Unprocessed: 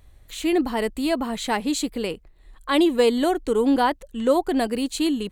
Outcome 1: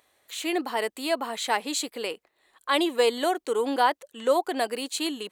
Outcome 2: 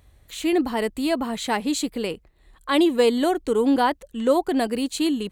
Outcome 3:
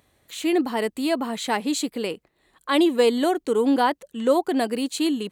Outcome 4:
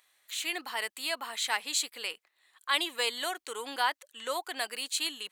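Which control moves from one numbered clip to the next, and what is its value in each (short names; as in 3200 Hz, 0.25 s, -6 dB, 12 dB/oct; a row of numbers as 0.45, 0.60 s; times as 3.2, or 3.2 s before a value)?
HPF, cutoff: 510, 45, 180, 1400 Hz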